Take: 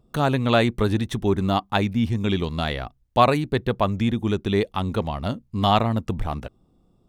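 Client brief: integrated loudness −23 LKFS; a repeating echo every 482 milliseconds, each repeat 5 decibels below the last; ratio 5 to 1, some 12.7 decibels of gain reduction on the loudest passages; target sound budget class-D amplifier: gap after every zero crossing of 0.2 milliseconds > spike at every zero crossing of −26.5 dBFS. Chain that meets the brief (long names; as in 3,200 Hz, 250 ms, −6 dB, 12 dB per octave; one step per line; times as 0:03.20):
downward compressor 5 to 1, threshold −25 dBFS
repeating echo 482 ms, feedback 56%, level −5 dB
gap after every zero crossing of 0.2 ms
spike at every zero crossing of −26.5 dBFS
level +6 dB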